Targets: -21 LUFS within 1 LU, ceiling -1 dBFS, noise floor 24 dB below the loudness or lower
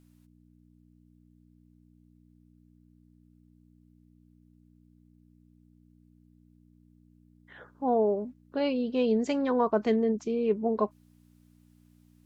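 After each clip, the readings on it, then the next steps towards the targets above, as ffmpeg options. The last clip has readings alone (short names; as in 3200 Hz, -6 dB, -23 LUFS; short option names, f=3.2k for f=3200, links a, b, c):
hum 60 Hz; harmonics up to 300 Hz; hum level -58 dBFS; loudness -28.0 LUFS; peak -14.0 dBFS; loudness target -21.0 LUFS
-> -af "bandreject=f=60:t=h:w=4,bandreject=f=120:t=h:w=4,bandreject=f=180:t=h:w=4,bandreject=f=240:t=h:w=4,bandreject=f=300:t=h:w=4"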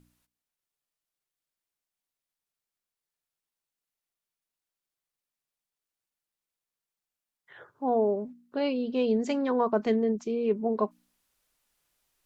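hum none; loudness -28.5 LUFS; peak -14.0 dBFS; loudness target -21.0 LUFS
-> -af "volume=7.5dB"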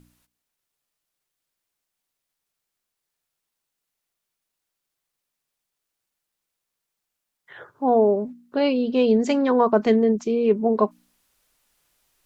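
loudness -21.0 LUFS; peak -6.5 dBFS; noise floor -83 dBFS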